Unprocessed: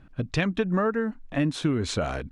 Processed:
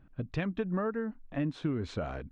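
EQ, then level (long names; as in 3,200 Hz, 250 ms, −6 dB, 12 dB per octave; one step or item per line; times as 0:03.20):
head-to-tape spacing loss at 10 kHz 21 dB
−6.5 dB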